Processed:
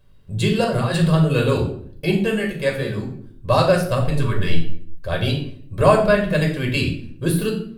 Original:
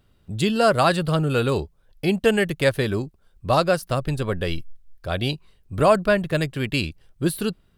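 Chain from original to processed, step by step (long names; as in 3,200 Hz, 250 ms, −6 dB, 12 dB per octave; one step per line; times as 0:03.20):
0:00.64–0:01.08: compressor whose output falls as the input rises −25 dBFS, ratio −1
0:02.18–0:03.03: tuned comb filter 70 Hz, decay 0.17 s, harmonics all, mix 90%
0:04.17–0:04.52: healed spectral selection 410–830 Hz before
convolution reverb RT60 0.60 s, pre-delay 4 ms, DRR 0.5 dB
level −2.5 dB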